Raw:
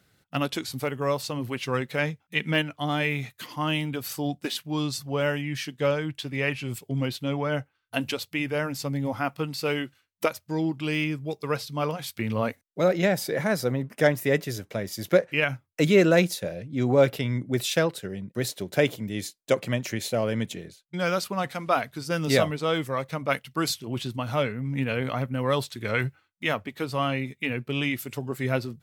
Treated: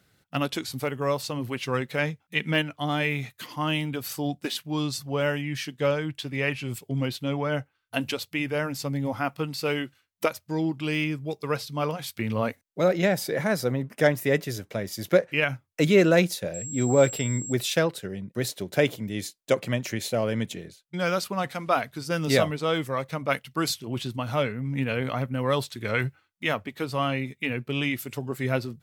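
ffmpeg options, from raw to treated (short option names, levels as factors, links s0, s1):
-filter_complex "[0:a]asettb=1/sr,asplit=3[s0][s1][s2];[s0]atrim=end=16.544[s3];[s1]atrim=start=16.54:end=17.53,asetpts=PTS-STARTPTS,afade=t=in:d=0.004:c=qsin,afade=t=out:st=0.986:d=0.004:c=qsin,aeval=exprs='val(0)+0.02*sin(2*PI*7600*n/s)':c=same[s4];[s2]atrim=start=17.526[s5];[s3][s4]acrossfade=d=0.004:c1=hsin:c2=qsin[s6];[s6][s5]acrossfade=d=0.004:c1=qsin:c2=hsin"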